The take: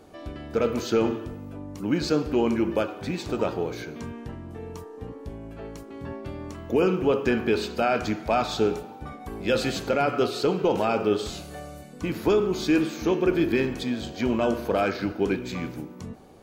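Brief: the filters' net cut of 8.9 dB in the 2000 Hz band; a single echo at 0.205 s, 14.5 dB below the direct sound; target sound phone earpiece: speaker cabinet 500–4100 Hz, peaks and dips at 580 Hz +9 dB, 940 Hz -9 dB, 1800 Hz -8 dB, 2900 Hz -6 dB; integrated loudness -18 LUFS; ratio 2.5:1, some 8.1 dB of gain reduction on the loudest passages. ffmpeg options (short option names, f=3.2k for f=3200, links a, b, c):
-af "equalizer=f=2k:t=o:g=-7,acompressor=threshold=-30dB:ratio=2.5,highpass=500,equalizer=f=580:t=q:w=4:g=9,equalizer=f=940:t=q:w=4:g=-9,equalizer=f=1.8k:t=q:w=4:g=-8,equalizer=f=2.9k:t=q:w=4:g=-6,lowpass=f=4.1k:w=0.5412,lowpass=f=4.1k:w=1.3066,aecho=1:1:205:0.188,volume=18dB"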